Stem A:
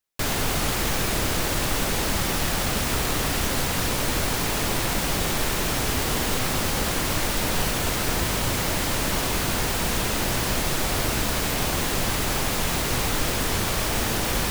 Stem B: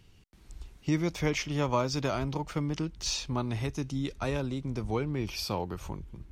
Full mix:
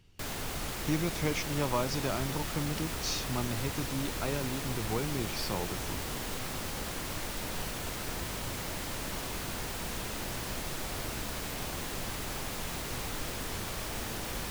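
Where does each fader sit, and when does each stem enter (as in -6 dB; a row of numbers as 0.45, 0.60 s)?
-12.5, -3.0 dB; 0.00, 0.00 s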